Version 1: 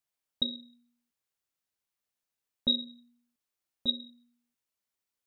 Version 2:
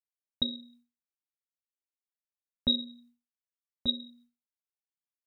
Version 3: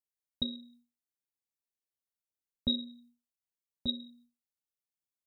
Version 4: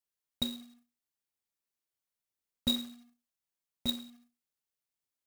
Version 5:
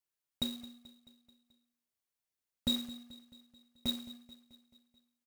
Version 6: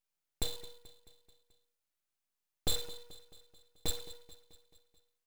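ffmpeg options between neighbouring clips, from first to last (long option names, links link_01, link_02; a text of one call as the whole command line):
ffmpeg -i in.wav -af "equalizer=frequency=64:width=0.69:gain=12.5,agate=range=-33dB:threshold=-57dB:ratio=3:detection=peak" out.wav
ffmpeg -i in.wav -af "equalizer=frequency=1600:width=0.51:gain=-10" out.wav
ffmpeg -i in.wav -af "acrusher=bits=2:mode=log:mix=0:aa=0.000001" out.wav
ffmpeg -i in.wav -af "asoftclip=type=hard:threshold=-22dB,aecho=1:1:217|434|651|868|1085:0.133|0.076|0.0433|0.0247|0.0141,volume=-1dB" out.wav
ffmpeg -i in.wav -af "aeval=exprs='abs(val(0))':channel_layout=same,volume=2.5dB" out.wav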